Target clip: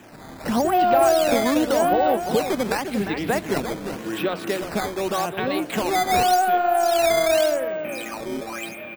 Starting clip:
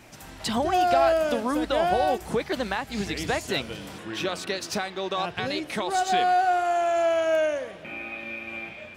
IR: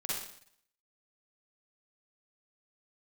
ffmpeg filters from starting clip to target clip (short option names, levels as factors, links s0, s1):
-filter_complex "[0:a]acrossover=split=160 3600:gain=0.178 1 0.224[s0][s1][s2];[s0][s1][s2]amix=inputs=3:normalize=0,asplit=2[s3][s4];[s4]asoftclip=type=tanh:threshold=0.0447,volume=0.473[s5];[s3][s5]amix=inputs=2:normalize=0,bandreject=f=6600:w=12,aecho=1:1:351:0.376,acrusher=samples=9:mix=1:aa=0.000001:lfo=1:lforange=14.4:lforate=0.87,lowshelf=f=440:g=6.5"